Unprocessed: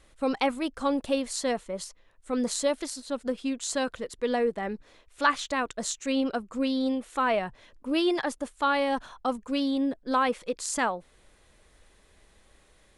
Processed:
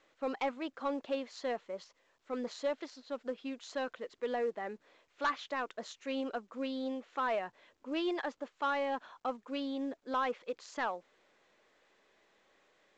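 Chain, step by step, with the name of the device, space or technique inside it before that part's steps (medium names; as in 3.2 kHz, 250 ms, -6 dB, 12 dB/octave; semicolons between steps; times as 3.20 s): telephone (band-pass 320–3200 Hz; saturation -17.5 dBFS, distortion -18 dB; trim -6 dB; µ-law 128 kbps 16 kHz)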